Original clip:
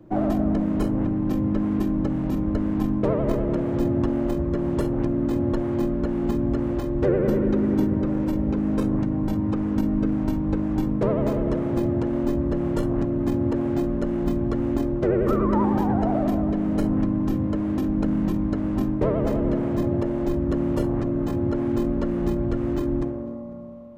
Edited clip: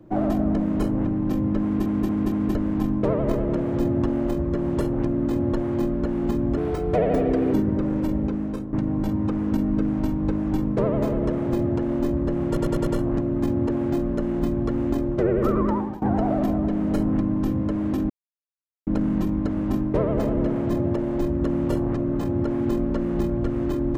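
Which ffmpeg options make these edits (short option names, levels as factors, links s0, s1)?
-filter_complex "[0:a]asplit=14[s0][s1][s2][s3][s4][s5][s6][s7][s8][s9][s10][s11][s12][s13];[s0]atrim=end=1.862[s14];[s1]atrim=start=1.628:end=1.862[s15];[s2]atrim=start=1.628:end=1.862[s16];[s3]atrim=start=1.628:end=1.862[s17];[s4]atrim=start=2.548:end=6.574[s18];[s5]atrim=start=6.57:end=7.78,asetpts=PTS-STARTPTS,asetrate=55125,aresample=44100[s19];[s6]atrim=start=7.776:end=8.97,asetpts=PTS-STARTPTS,afade=t=out:st=0.634:d=0.56:silence=0.223872[s20];[s7]atrim=start=8.97:end=12.812,asetpts=PTS-STARTPTS,afade=t=in:d=0.004:c=hsin:silence=0.223872[s21];[s8]atrim=start=12.708:end=12.812[s22];[s9]atrim=start=12.708:end=12.812[s23];[s10]atrim=start=12.708:end=12.812[s24];[s11]atrim=start=12.708:end=15.86,asetpts=PTS-STARTPTS,afade=t=out:st=2.752:d=0.4:silence=0.0794328[s25];[s12]atrim=start=15.86:end=17.94,asetpts=PTS-STARTPTS,afade=t=in:d=0.004:c=hsin:silence=0.0794328,afade=t=out:st=2.076:d=0.004:c=hsin,apad=pad_dur=0.77[s26];[s13]atrim=start=17.94,asetpts=PTS-STARTPTS,afade=t=in:d=0.004:c=hsin[s27];[s14][s15]acrossfade=d=0.004:c1=hsin:c2=hsin[s28];[s28][s16]acrossfade=d=0.004:c1=hsin:c2=hsin[s29];[s29][s17]acrossfade=d=0.004:c1=hsin:c2=hsin[s30];[s30][s18]acrossfade=d=0.004:c1=hsin:c2=hsin[s31];[s31][s19]acrossfade=d=0.004:c1=hsin:c2=hsin[s32];[s20][s21]concat=n=2:v=0:a=1[s33];[s32][s33]acrossfade=d=0.004:c1=hsin:c2=hsin[s34];[s34][s22]acrossfade=d=0.004:c1=hsin:c2=hsin[s35];[s35][s23]acrossfade=d=0.004:c1=hsin:c2=hsin[s36];[s36][s24]acrossfade=d=0.004:c1=hsin:c2=hsin[s37];[s25][s26][s27]concat=n=3:v=0:a=1[s38];[s37][s38]acrossfade=d=0.004:c1=hsin:c2=hsin"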